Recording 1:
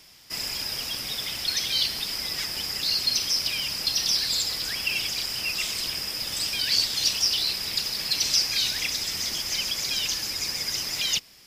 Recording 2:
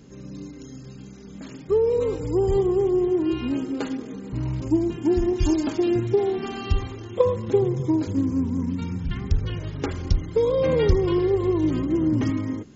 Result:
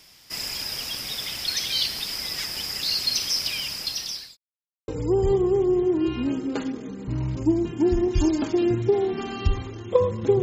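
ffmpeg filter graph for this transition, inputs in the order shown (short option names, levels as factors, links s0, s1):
-filter_complex "[0:a]apad=whole_dur=10.42,atrim=end=10.42,asplit=2[s0][s1];[s0]atrim=end=4.37,asetpts=PTS-STARTPTS,afade=t=out:st=3.34:d=1.03:c=qsin[s2];[s1]atrim=start=4.37:end=4.88,asetpts=PTS-STARTPTS,volume=0[s3];[1:a]atrim=start=2.13:end=7.67,asetpts=PTS-STARTPTS,afade=t=in:d=0.004:c=hsin[s4];[s2][s3][s4]concat=n=3:v=0:a=1"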